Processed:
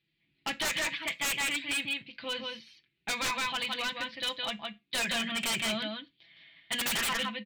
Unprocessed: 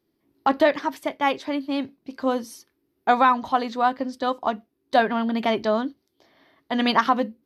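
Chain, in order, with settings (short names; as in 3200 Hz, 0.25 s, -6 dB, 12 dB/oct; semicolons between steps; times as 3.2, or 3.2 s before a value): HPF 41 Hz; high shelf 8900 Hz -11.5 dB; comb 6 ms, depth 77%; echo 0.164 s -4.5 dB; in parallel at -2.5 dB: limiter -10.5 dBFS, peak gain reduction 8 dB; on the sum: EQ curve 150 Hz 0 dB, 340 Hz -17 dB, 1100 Hz -14 dB, 2500 Hz +13 dB, 4000 Hz +7 dB, 6900 Hz -22 dB; wavefolder -17 dBFS; on a send at -15 dB: reverb RT60 0.20 s, pre-delay 3 ms; on the sum: gain -8 dB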